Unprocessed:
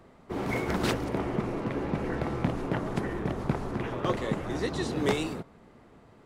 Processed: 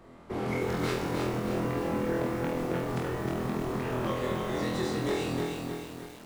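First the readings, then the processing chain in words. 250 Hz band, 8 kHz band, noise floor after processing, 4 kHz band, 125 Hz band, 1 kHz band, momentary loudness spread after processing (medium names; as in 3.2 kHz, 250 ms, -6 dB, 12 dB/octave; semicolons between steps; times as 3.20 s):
-0.5 dB, +0.5 dB, -49 dBFS, -0.5 dB, -1.0 dB, 0.0 dB, 4 LU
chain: compression 6:1, threshold -32 dBFS, peak gain reduction 11 dB; on a send: flutter echo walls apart 4.1 m, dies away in 0.61 s; on the sum: bit-crushed delay 311 ms, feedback 55%, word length 8-bit, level -3.5 dB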